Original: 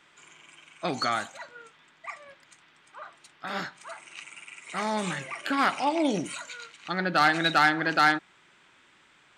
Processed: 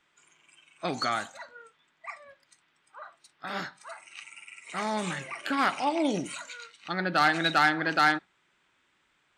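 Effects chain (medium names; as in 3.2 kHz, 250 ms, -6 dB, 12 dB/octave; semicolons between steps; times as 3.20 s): spectral noise reduction 9 dB; trim -1.5 dB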